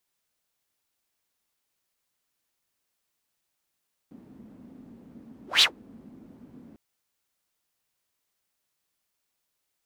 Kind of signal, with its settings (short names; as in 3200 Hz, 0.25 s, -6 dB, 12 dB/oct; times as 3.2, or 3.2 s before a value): whoosh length 2.65 s, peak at 1.51, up 0.17 s, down 0.11 s, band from 240 Hz, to 3900 Hz, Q 5, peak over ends 32 dB